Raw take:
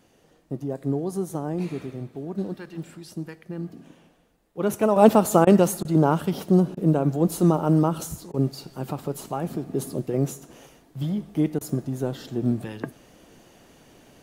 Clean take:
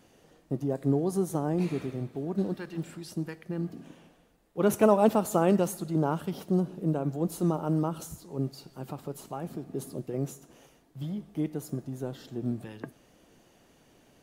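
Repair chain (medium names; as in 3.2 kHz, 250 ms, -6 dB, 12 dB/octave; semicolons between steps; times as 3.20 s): interpolate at 5.45/5.83/6.75/8.32/11.59 s, 18 ms; trim 0 dB, from 4.96 s -8 dB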